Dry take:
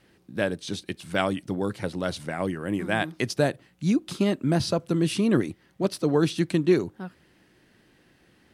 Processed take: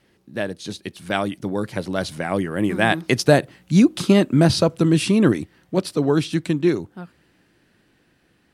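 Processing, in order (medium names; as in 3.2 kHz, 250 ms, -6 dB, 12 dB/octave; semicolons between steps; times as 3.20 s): Doppler pass-by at 3.77 s, 14 m/s, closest 19 m; trim +9 dB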